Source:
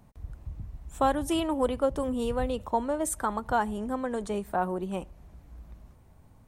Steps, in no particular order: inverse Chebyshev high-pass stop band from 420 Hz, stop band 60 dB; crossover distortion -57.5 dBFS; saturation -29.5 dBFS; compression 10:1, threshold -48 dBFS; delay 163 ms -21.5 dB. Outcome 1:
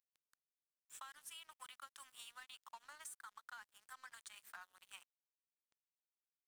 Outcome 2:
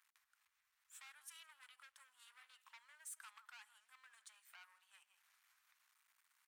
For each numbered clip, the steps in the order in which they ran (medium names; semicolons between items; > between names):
inverse Chebyshev high-pass > saturation > compression > delay > crossover distortion; crossover distortion > delay > saturation > compression > inverse Chebyshev high-pass